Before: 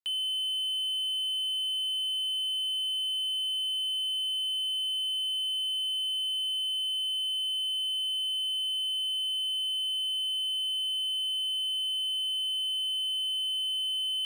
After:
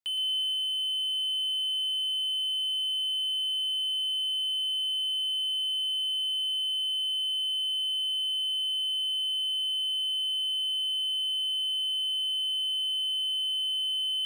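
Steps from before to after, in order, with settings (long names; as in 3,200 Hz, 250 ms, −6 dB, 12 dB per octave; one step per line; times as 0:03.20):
delay with a low-pass on its return 365 ms, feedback 66%, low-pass 1,700 Hz, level −11 dB
feedback echo at a low word length 117 ms, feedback 55%, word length 10 bits, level −9 dB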